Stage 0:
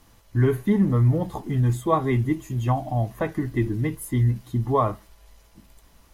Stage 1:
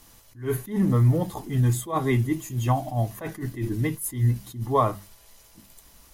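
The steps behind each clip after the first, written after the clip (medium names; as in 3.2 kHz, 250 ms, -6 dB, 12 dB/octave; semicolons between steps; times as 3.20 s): treble shelf 4.1 kHz +10.5 dB; hum notches 50/100/150/200 Hz; attacks held to a fixed rise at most 170 dB/s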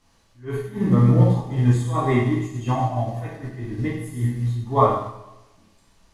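distance through air 82 m; plate-style reverb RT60 1.1 s, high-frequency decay 1×, DRR -6.5 dB; upward expansion 1.5:1, over -30 dBFS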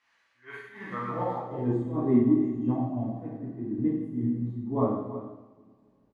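band-pass sweep 1.9 kHz -> 260 Hz, 0.91–1.92 s; delay 329 ms -13 dB; two-slope reverb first 0.8 s, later 3.2 s, from -21 dB, DRR 8 dB; trim +3 dB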